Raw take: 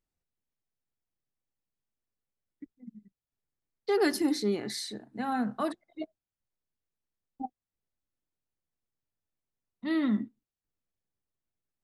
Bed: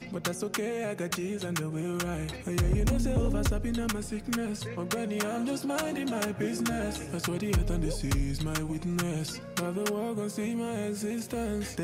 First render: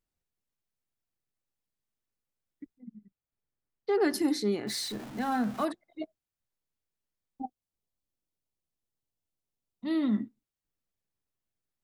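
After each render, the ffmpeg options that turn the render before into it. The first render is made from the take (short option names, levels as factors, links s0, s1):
-filter_complex "[0:a]asettb=1/sr,asplit=3[s0][s1][s2];[s0]atrim=end=2.784[s3];[s1]atrim=start=2.78:end=4.14,asetpts=PTS-STARTPTS,afade=t=in:d=0.004:c=qsin,afade=t=out:st=1.356:d=0.004:c=qsin,lowpass=f=1900:p=1[s4];[s2]atrim=start=4.136[s5];[s3][s4]acrossfade=d=0.004:c1=hsin:c2=qsin[s6];[s6][s5]acrossfade=d=0.004:c1=qsin:c2=hsin,asettb=1/sr,asplit=3[s7][s8][s9];[s7]atrim=end=4.674[s10];[s8]atrim=start=4.67:end=5.65,asetpts=PTS-STARTPTS,afade=t=in:d=0.004:c=qsin,afade=t=out:st=0.976:d=0.004:c=qsin,aeval=exprs='val(0)+0.5*0.0112*sgn(val(0))':c=same[s11];[s9]atrim=start=5.646[s12];[s10][s11]acrossfade=d=0.004:c1=hsin:c2=qsin[s13];[s13][s12]acrossfade=d=0.004:c1=qsin:c2=hsin,asettb=1/sr,asplit=3[s14][s15][s16];[s14]atrim=end=7.414[s17];[s15]atrim=start=7.41:end=10.13,asetpts=PTS-STARTPTS,afade=t=in:d=0.004:c=qsin,afade=t=out:st=2.716:d=0.004:c=qsin,equalizer=f=1700:w=1.5:g=-8[s18];[s16]atrim=start=10.126[s19];[s17][s18]acrossfade=d=0.004:c1=hsin:c2=qsin[s20];[s20][s19]acrossfade=d=0.004:c1=qsin:c2=hsin"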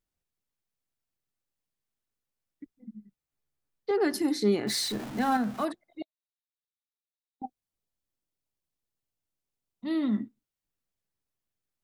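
-filter_complex "[0:a]asettb=1/sr,asplit=3[s0][s1][s2];[s0]atrim=end=2.774[s3];[s1]atrim=start=2.77:end=3.91,asetpts=PTS-STARTPTS,afade=t=in:d=0.004:c=qsin,afade=t=out:st=1.136:d=0.004:c=qsin,asplit=2[s4][s5];[s5]adelay=14,volume=0.794[s6];[s4][s6]amix=inputs=2:normalize=0,atrim=end_sample=50274[s7];[s2]atrim=start=3.906[s8];[s3][s7]acrossfade=d=0.004:c1=hsin:c2=qsin[s9];[s9][s8]acrossfade=d=0.004:c1=qsin:c2=hsin,asettb=1/sr,asplit=3[s10][s11][s12];[s10]atrim=end=6.024[s13];[s11]atrim=start=6.02:end=7.42,asetpts=PTS-STARTPTS,afade=t=in:d=0.004:c=qsin,afade=t=out:st=1.396:d=0.004:c=qsin,bandpass=f=3800:t=q:w=9.6[s14];[s12]atrim=start=7.416[s15];[s13][s14]acrossfade=d=0.004:c1=hsin:c2=qsin[s16];[s16][s15]acrossfade=d=0.004:c1=qsin:c2=hsin,asplit=3[s17][s18][s19];[s17]atrim=end=4.422[s20];[s18]atrim=start=4.418:end=5.372,asetpts=PTS-STARTPTS,volume=1.68[s21];[s19]atrim=start=5.368[s22];[s20][s21]acrossfade=d=0.004:c1=hsin:c2=hsin[s23];[s23][s22]acrossfade=d=0.004:c1=hsin:c2=hsin"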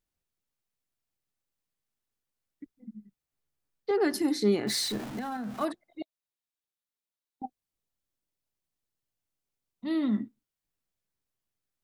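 -filter_complex "[0:a]asettb=1/sr,asplit=3[s0][s1][s2];[s0]atrim=end=5.024[s3];[s1]atrim=start=5.02:end=5.61,asetpts=PTS-STARTPTS,afade=t=in:d=0.004:c=qsin,afade=t=out:st=0.586:d=0.004:c=qsin,acompressor=threshold=0.0251:ratio=5:attack=3.2:release=140:knee=1:detection=peak[s4];[s2]atrim=start=5.606[s5];[s3][s4]acrossfade=d=0.004:c1=hsin:c2=qsin[s6];[s6][s5]acrossfade=d=0.004:c1=qsin:c2=hsin"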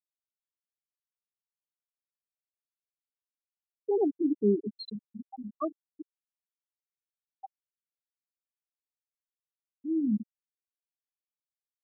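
-af "afftfilt=real='re*gte(hypot(re,im),0.2)':imag='im*gte(hypot(re,im),0.2)':win_size=1024:overlap=0.75"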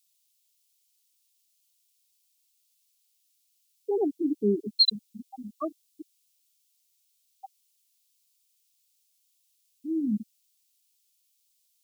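-af "aexciter=amount=11.7:drive=5.8:freq=2400"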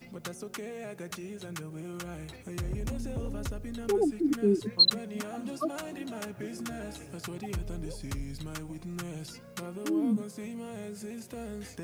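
-filter_complex "[1:a]volume=0.398[s0];[0:a][s0]amix=inputs=2:normalize=0"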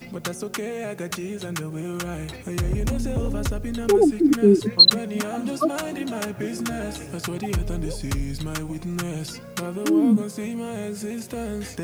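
-af "volume=3.16,alimiter=limit=0.794:level=0:latency=1"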